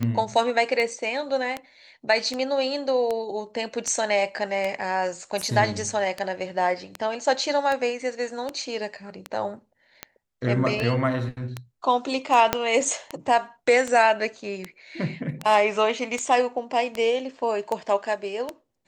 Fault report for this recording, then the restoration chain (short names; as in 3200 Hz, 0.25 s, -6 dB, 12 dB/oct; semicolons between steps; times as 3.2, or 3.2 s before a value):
tick 78 rpm -14 dBFS
12.53 pop -4 dBFS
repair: de-click